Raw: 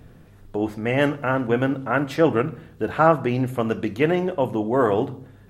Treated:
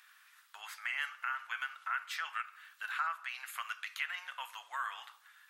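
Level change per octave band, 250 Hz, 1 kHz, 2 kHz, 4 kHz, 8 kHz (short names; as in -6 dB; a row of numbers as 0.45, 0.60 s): under -40 dB, -14.5 dB, -7.5 dB, -6.0 dB, n/a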